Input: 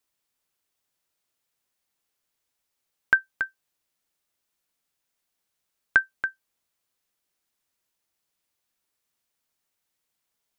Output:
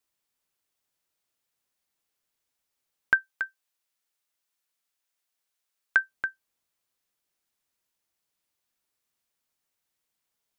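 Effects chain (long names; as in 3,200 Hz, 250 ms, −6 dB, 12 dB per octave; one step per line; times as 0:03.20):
0:03.14–0:05.99: low-shelf EQ 420 Hz −11.5 dB
level −2 dB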